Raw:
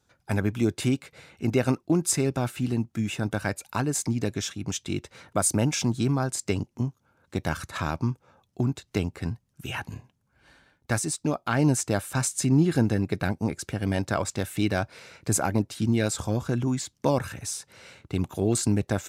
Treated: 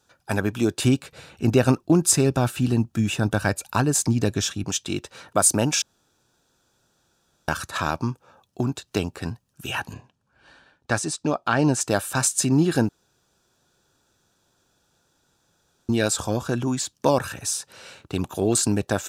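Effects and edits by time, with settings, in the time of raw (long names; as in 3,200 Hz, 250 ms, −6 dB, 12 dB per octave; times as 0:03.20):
0:00.85–0:04.64: low-shelf EQ 160 Hz +11 dB
0:05.82–0:07.48: fill with room tone
0:09.93–0:11.81: high-frequency loss of the air 60 metres
0:12.89–0:15.89: fill with room tone
whole clip: low-shelf EQ 270 Hz −9 dB; notch filter 2,100 Hz, Q 5.4; level +6.5 dB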